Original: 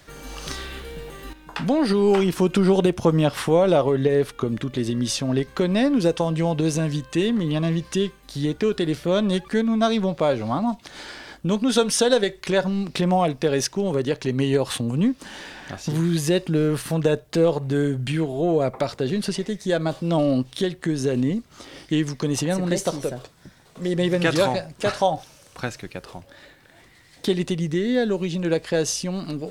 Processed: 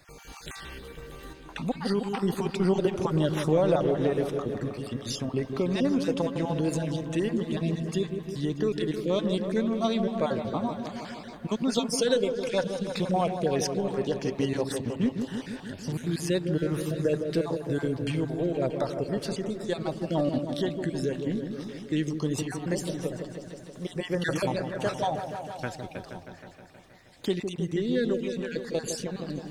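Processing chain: random spectral dropouts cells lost 33%; repeats that get brighter 0.158 s, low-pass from 750 Hz, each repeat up 1 oct, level -6 dB; gain -6 dB

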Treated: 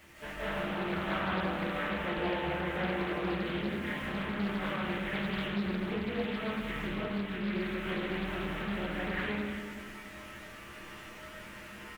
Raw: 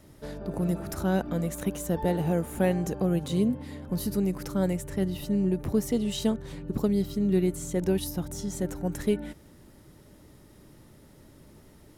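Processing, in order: CVSD 16 kbps; bit-crush 11-bit; bell 1800 Hz +2.5 dB; resonator 69 Hz, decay 0.18 s, harmonics odd, mix 80%; compressor 6:1, threshold -41 dBFS, peak gain reduction 15 dB; tilt shelf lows -8 dB, about 760 Hz; doubler 26 ms -14 dB; digital reverb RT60 1.9 s, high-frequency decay 0.55×, pre-delay 0.12 s, DRR -8.5 dB; Doppler distortion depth 0.45 ms; gain +6 dB

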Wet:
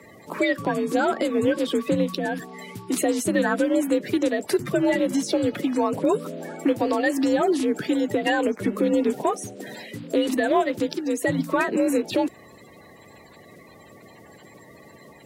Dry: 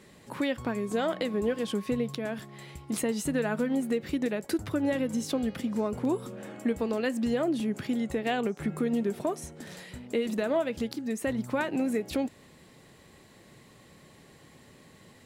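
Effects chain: bin magnitudes rounded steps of 30 dB; frequency shift +43 Hz; gain +7.5 dB

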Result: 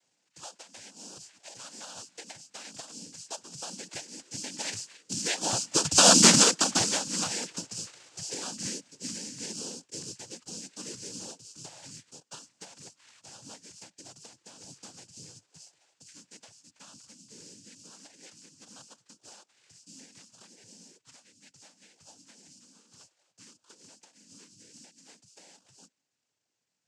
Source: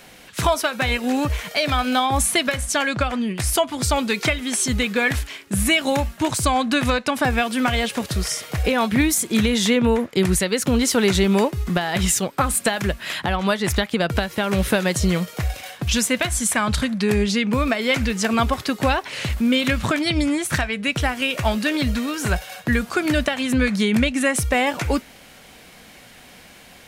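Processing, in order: Doppler pass-by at 6.19, 26 m/s, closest 4.4 m; careless resampling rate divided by 8×, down filtered, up zero stuff; noise vocoder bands 8

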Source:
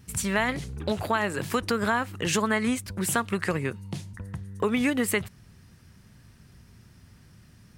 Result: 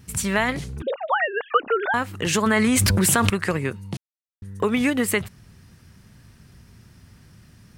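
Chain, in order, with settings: 0.82–1.94 sine-wave speech; 2.46–3.3 fast leveller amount 100%; 3.97–4.42 mute; gain +3.5 dB

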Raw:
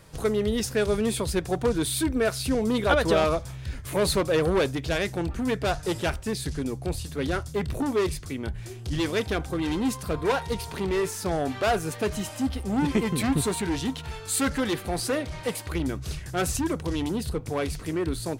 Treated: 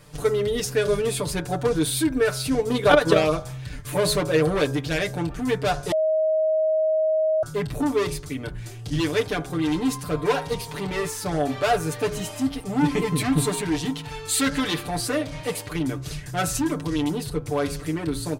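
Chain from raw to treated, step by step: comb 6.8 ms, depth 87%; de-hum 69.74 Hz, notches 24; 2.56–3.22 transient shaper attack +8 dB, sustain -4 dB; 5.92–7.43 bleep 630 Hz -18 dBFS; 14.17–14.88 dynamic EQ 3500 Hz, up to +5 dB, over -41 dBFS, Q 0.84

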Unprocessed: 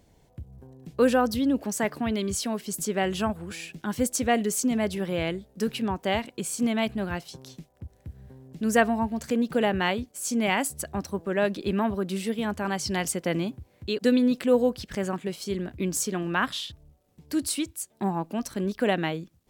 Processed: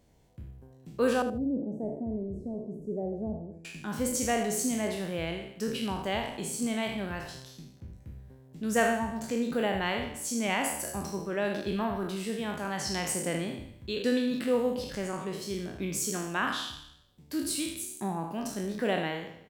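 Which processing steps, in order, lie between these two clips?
spectral trails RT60 0.76 s; 1.22–3.65 inverse Chebyshev low-pass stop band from 1200 Hz, stop band 40 dB; feedback echo 78 ms, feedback 19%, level -12 dB; gain -6.5 dB

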